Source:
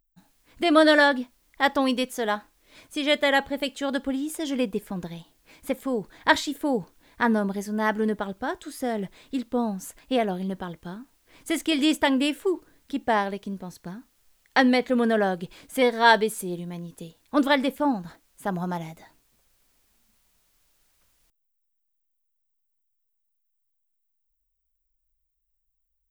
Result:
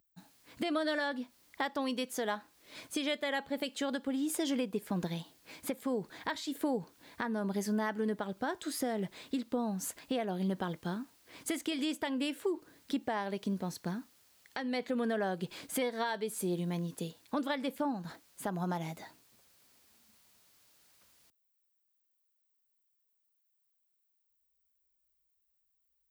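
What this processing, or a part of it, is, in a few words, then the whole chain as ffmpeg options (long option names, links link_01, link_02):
broadcast voice chain: -af "highpass=110,deesser=0.5,acompressor=threshold=-31dB:ratio=4,equalizer=frequency=4500:width_type=o:width=0.45:gain=3,alimiter=level_in=0.5dB:limit=-24dB:level=0:latency=1:release=350,volume=-0.5dB,volume=1.5dB"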